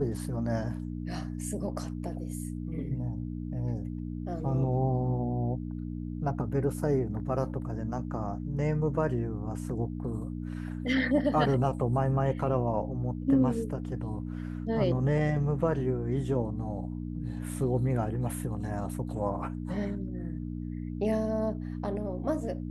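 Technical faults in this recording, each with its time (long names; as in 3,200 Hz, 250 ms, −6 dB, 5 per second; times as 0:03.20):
mains hum 60 Hz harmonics 5 −36 dBFS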